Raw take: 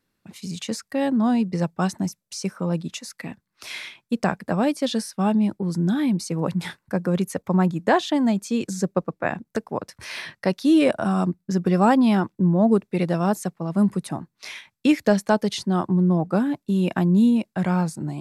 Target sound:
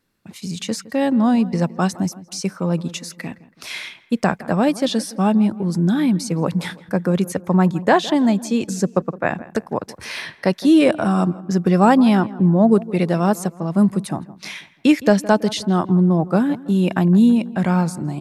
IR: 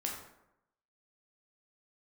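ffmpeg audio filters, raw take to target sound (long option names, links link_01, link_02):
-filter_complex "[0:a]asplit=2[link_01][link_02];[link_02]adelay=164,lowpass=frequency=2000:poles=1,volume=-18dB,asplit=2[link_03][link_04];[link_04]adelay=164,lowpass=frequency=2000:poles=1,volume=0.49,asplit=2[link_05][link_06];[link_06]adelay=164,lowpass=frequency=2000:poles=1,volume=0.49,asplit=2[link_07][link_08];[link_08]adelay=164,lowpass=frequency=2000:poles=1,volume=0.49[link_09];[link_01][link_03][link_05][link_07][link_09]amix=inputs=5:normalize=0,volume=4dB"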